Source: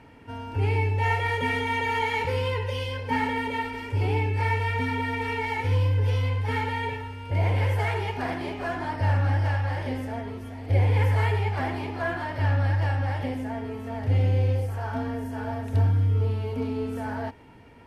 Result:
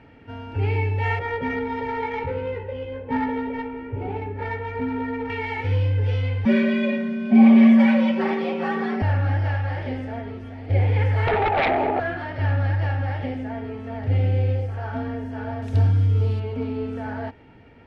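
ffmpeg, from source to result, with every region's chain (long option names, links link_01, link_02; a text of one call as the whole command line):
ffmpeg -i in.wav -filter_complex "[0:a]asettb=1/sr,asplit=3[link_01][link_02][link_03];[link_01]atrim=end=1.194[link_04];[link_02]atrim=start=1.19:end=5.3,asetpts=PTS-STARTPTS,afade=type=in:duration=0.004:curve=qsin,afade=type=out:start_time=4.106:duration=0.004:curve=qsin,adynamicsmooth=sensitivity=0.5:basefreq=1100,asplit=2[link_05][link_06];[link_06]adelay=15,volume=-3dB[link_07];[link_05][link_07]amix=inputs=2:normalize=0,atrim=end_sample=181251[link_08];[link_03]atrim=start=5.296[link_09];[link_04][link_08]acrossfade=duration=0.004:curve1=hsin:curve2=qsin[link_10];[link_10][link_09]acrossfade=duration=0.004:curve1=qsin:curve2=hsin,asettb=1/sr,asplit=3[link_11][link_12][link_13];[link_11]atrim=end=6.454[link_14];[link_12]atrim=start=6.45:end=9.02,asetpts=PTS-STARTPTS,afade=type=in:duration=0.004:curve=qsin,afade=type=out:start_time=2.566:duration=0.004:curve=qsin,equalizer=frequency=82:width=0.62:gain=6.5,afreqshift=130,aecho=1:1:5.3:0.99,atrim=end_sample=113337[link_15];[link_13]atrim=start=9.016[link_16];[link_14][link_15]acrossfade=duration=0.004:curve1=hsin:curve2=qsin[link_17];[link_17][link_16]acrossfade=duration=0.004:curve1=qsin:curve2=hsin,asettb=1/sr,asplit=3[link_18][link_19][link_20];[link_18]atrim=end=11.274[link_21];[link_19]atrim=start=11.27:end=12,asetpts=PTS-STARTPTS,afade=type=in:duration=0.004:curve=qsin,afade=type=out:start_time=0.726:duration=0.004:curve=qsin,bandpass=frequency=670:width_type=q:width=2.2,aeval=exprs='0.133*sin(PI/2*6.31*val(0)/0.133)':channel_layout=same[link_22];[link_20]atrim=start=11.996[link_23];[link_21][link_22]acrossfade=duration=0.004:curve1=hsin:curve2=qsin[link_24];[link_24][link_23]acrossfade=duration=0.004:curve1=qsin:curve2=hsin,asettb=1/sr,asplit=3[link_25][link_26][link_27];[link_25]atrim=end=15.624[link_28];[link_26]atrim=start=15.62:end=16.4,asetpts=PTS-STARTPTS,afade=type=in:duration=0.004:curve=qsin,afade=type=out:start_time=0.776:duration=0.004:curve=qsin,bass=frequency=250:gain=2,treble=frequency=4000:gain=14,bandreject=frequency=1900:width=23,acrusher=bits=7:mix=0:aa=0.5[link_29];[link_27]atrim=start=16.396[link_30];[link_28][link_29]acrossfade=duration=0.004:curve1=hsin:curve2=qsin[link_31];[link_31][link_30]acrossfade=duration=0.004:curve1=qsin:curve2=hsin,lowpass=3600,bandreject=frequency=1000:width=5.1,volume=1.5dB" out.wav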